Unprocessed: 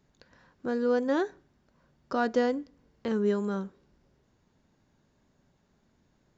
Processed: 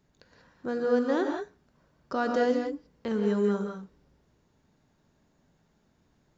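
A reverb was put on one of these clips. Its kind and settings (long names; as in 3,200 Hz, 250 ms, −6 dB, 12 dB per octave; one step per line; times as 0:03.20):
reverb whose tail is shaped and stops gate 210 ms rising, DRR 2.5 dB
level −1 dB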